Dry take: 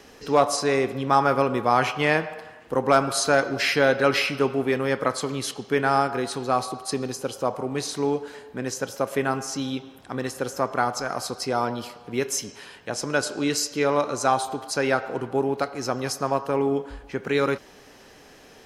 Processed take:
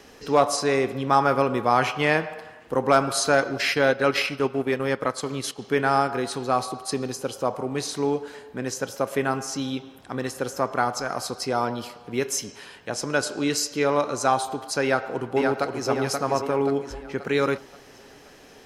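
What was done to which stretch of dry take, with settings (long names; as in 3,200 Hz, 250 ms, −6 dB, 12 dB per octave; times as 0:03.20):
0:03.44–0:05.62: transient designer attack −3 dB, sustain −7 dB
0:14.83–0:15.88: delay throw 530 ms, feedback 45%, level −3.5 dB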